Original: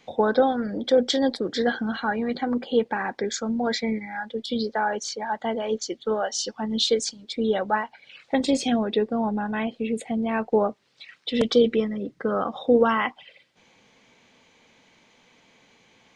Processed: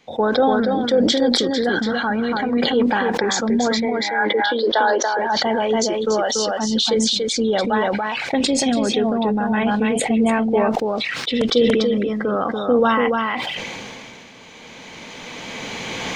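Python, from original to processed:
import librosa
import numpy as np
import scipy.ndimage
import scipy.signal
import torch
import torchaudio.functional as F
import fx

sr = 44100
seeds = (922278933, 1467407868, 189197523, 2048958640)

p1 = fx.recorder_agc(x, sr, target_db=-13.5, rise_db_per_s=9.9, max_gain_db=30)
p2 = fx.cabinet(p1, sr, low_hz=320.0, low_slope=24, high_hz=3900.0, hz=(330.0, 600.0, 1000.0, 1600.0, 2400.0), db=(8, 5, 8, 5, -6), at=(3.8, 5.19))
p3 = p2 + fx.echo_single(p2, sr, ms=286, db=-4.5, dry=0)
p4 = fx.sustainer(p3, sr, db_per_s=21.0)
y = p4 * librosa.db_to_amplitude(1.0)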